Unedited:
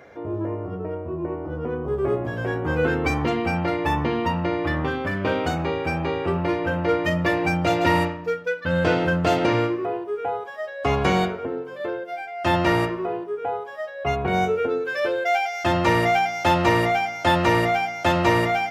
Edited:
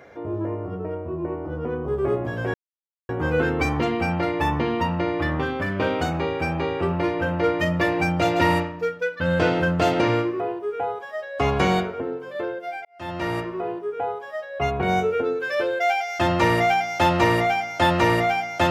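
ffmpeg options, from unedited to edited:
ffmpeg -i in.wav -filter_complex "[0:a]asplit=3[link_01][link_02][link_03];[link_01]atrim=end=2.54,asetpts=PTS-STARTPTS,afade=type=out:start_time=2.536:duration=0.004:curve=hsin,apad=pad_dur=0.55[link_04];[link_02]atrim=start=2.54:end=12.3,asetpts=PTS-STARTPTS,afade=type=in:duration=0.004:curve=hsin,afade=type=out:start_time=9.756:duration=0.004:curve=hsin[link_05];[link_03]atrim=start=12.3,asetpts=PTS-STARTPTS,afade=type=in:duration=0.91[link_06];[link_04][link_05][link_06]concat=n=3:v=0:a=1" out.wav

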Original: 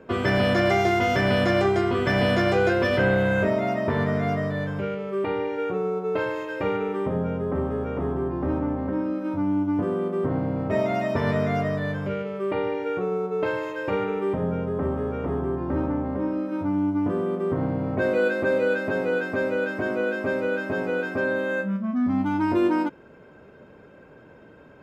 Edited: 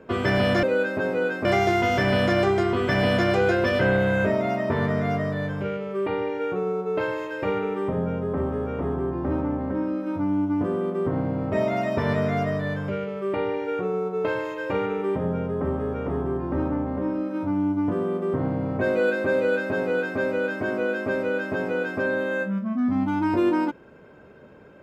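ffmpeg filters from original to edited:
ffmpeg -i in.wav -filter_complex "[0:a]asplit=3[link_01][link_02][link_03];[link_01]atrim=end=0.632[link_04];[link_02]atrim=start=18.538:end=19.362[link_05];[link_03]atrim=start=0.628[link_06];[link_04][link_05]acrossfade=duration=0.004:curve1=hsin:curve2=hsin[link_07];[link_07][link_06]acrossfade=duration=0.004:curve1=hsin:curve2=hsin" out.wav

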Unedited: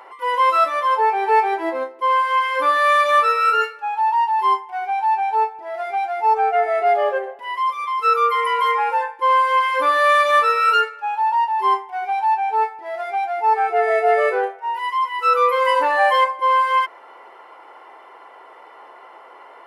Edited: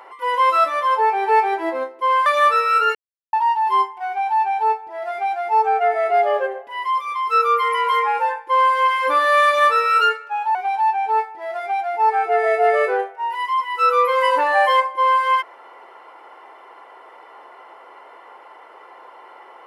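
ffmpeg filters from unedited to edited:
ffmpeg -i in.wav -filter_complex "[0:a]asplit=5[link_01][link_02][link_03][link_04][link_05];[link_01]atrim=end=2.262[link_06];[link_02]atrim=start=2.978:end=3.67,asetpts=PTS-STARTPTS,afade=type=out:start_time=0.688:duration=0.004:curve=hsin[link_07];[link_03]atrim=start=3.67:end=4.05,asetpts=PTS-STARTPTS,volume=0[link_08];[link_04]atrim=start=4.05:end=11.272,asetpts=PTS-STARTPTS,afade=type=in:duration=0.004:curve=hsin[link_09];[link_05]atrim=start=11.988[link_10];[link_07][link_08][link_09]concat=n=3:v=0:a=1[link_11];[link_06][link_11]acrossfade=duration=0.004:curve1=hsin:curve2=hsin[link_12];[link_12][link_10]acrossfade=duration=0.004:curve1=hsin:curve2=hsin" out.wav

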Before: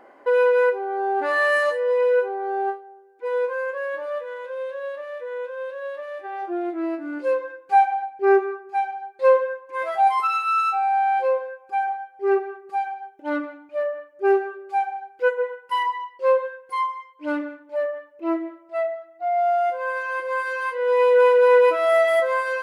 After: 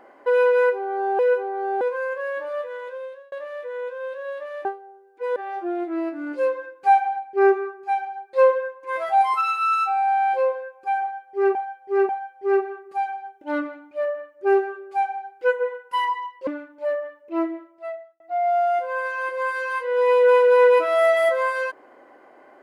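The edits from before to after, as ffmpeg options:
ffmpeg -i in.wav -filter_complex "[0:a]asplit=10[link_01][link_02][link_03][link_04][link_05][link_06][link_07][link_08][link_09][link_10];[link_01]atrim=end=1.192[link_11];[link_02]atrim=start=2.048:end=2.672[link_12];[link_03]atrim=start=3.378:end=4.89,asetpts=PTS-STARTPTS,afade=type=out:start_time=1.052:duration=0.46[link_13];[link_04]atrim=start=4.89:end=6.222,asetpts=PTS-STARTPTS,afade=type=in:duration=0.004:curve=hsin[link_14];[link_05]atrim=start=2.668:end=3.382[link_15];[link_06]atrim=start=6.218:end=12.412[link_16];[link_07]atrim=start=11.868:end=12.412[link_17];[link_08]atrim=start=11.868:end=16.252[link_18];[link_09]atrim=start=17.378:end=19.11,asetpts=PTS-STARTPTS,afade=type=out:start_time=0.992:duration=0.74[link_19];[link_10]atrim=start=19.11,asetpts=PTS-STARTPTS,afade=type=in:duration=0.004:curve=hsin[link_20];[link_11][link_12]acrossfade=duration=0.004:curve1=hsin:curve2=hsin[link_21];[link_13][link_14]concat=n=2:v=0:a=1[link_22];[link_21][link_22]acrossfade=duration=0.004:curve1=hsin:curve2=hsin[link_23];[link_23][link_15]acrossfade=duration=0.004:curve1=hsin:curve2=hsin[link_24];[link_24][link_16]acrossfade=duration=0.004:curve1=hsin:curve2=hsin[link_25];[link_25][link_17]acrossfade=duration=0.004:curve1=hsin:curve2=hsin[link_26];[link_26][link_18]acrossfade=duration=0.004:curve1=hsin:curve2=hsin[link_27];[link_19][link_20]concat=n=2:v=0:a=1[link_28];[link_27][link_28]acrossfade=duration=0.004:curve1=hsin:curve2=hsin" out.wav

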